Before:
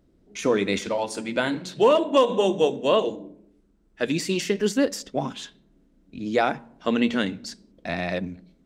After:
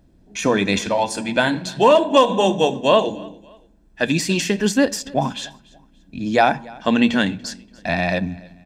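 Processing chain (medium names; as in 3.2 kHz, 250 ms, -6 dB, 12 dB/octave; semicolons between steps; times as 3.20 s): comb 1.2 ms, depth 46%; feedback delay 288 ms, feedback 34%, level -23.5 dB; trim +6 dB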